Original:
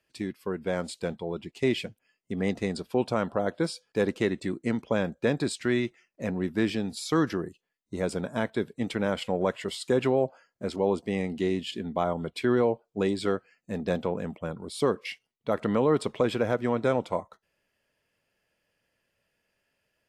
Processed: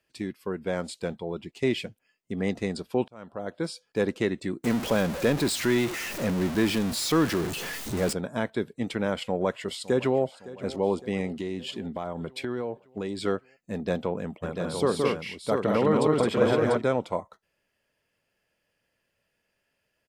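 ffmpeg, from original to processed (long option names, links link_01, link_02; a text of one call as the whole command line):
ffmpeg -i in.wav -filter_complex "[0:a]asettb=1/sr,asplit=3[link_01][link_02][link_03];[link_01]atrim=end=4.644[link_04];[link_02]atrim=start=4.64:end=8.13,asetpts=PTS-STARTPTS,afade=type=in:duration=0.004:curve=qsin,afade=type=out:start_time=3.486:duration=0.004:curve=qsin,aeval=exprs='val(0)+0.5*0.0422*sgn(val(0))':channel_layout=same[link_05];[link_03]atrim=start=8.126[link_06];[link_04][link_05]acrossfade=duration=0.004:curve1=hsin:curve2=qsin[link_07];[link_07][link_06]acrossfade=duration=0.004:curve1=qsin:curve2=hsin,asplit=2[link_08][link_09];[link_09]afade=type=in:start_time=9.14:duration=0.01,afade=type=out:start_time=10.2:duration=0.01,aecho=0:1:560|1120|1680|2240|2800|3360:0.133352|0.0800113|0.0480068|0.0288041|0.0172824|0.0103695[link_10];[link_08][link_10]amix=inputs=2:normalize=0,asettb=1/sr,asplit=3[link_11][link_12][link_13];[link_11]atrim=end=11.284[link_14];[link_12]atrim=start=11.28:end=13.21,asetpts=PTS-STARTPTS,afade=type=in:duration=0.004:curve=qsin,afade=type=out:start_time=1.926:duration=0.004:curve=qsin,acompressor=threshold=-28dB:ratio=4:attack=3.2:release=140:knee=1:detection=peak[link_15];[link_13]atrim=start=13.206[link_16];[link_14][link_15]acrossfade=duration=0.004:curve1=hsin:curve2=qsin[link_17];[link_17][link_16]acrossfade=duration=0.004:curve1=qsin:curve2=hsin,asplit=3[link_18][link_19][link_20];[link_18]afade=type=out:start_time=14.42:duration=0.02[link_21];[link_19]aecho=1:1:170|215|693:0.668|0.708|0.562,afade=type=in:start_time=14.42:duration=0.02,afade=type=out:start_time=16.8:duration=0.02[link_22];[link_20]afade=type=in:start_time=16.8:duration=0.02[link_23];[link_21][link_22][link_23]amix=inputs=3:normalize=0,asplit=2[link_24][link_25];[link_24]atrim=end=3.08,asetpts=PTS-STARTPTS,afade=type=out:start_time=3.076:duration=0.004:curve=hsin[link_26];[link_25]atrim=start=3.08,asetpts=PTS-STARTPTS,afade=type=in:duration=0.77[link_27];[link_26][link_27]concat=n=2:v=0:a=1" out.wav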